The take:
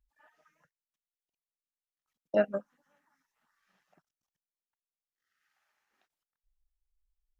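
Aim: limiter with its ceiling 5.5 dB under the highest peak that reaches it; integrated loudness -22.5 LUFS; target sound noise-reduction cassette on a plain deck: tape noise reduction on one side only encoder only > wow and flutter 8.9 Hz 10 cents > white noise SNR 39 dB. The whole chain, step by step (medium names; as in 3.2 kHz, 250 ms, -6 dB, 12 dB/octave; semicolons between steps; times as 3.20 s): peak limiter -18 dBFS; tape noise reduction on one side only encoder only; wow and flutter 8.9 Hz 10 cents; white noise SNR 39 dB; trim +11.5 dB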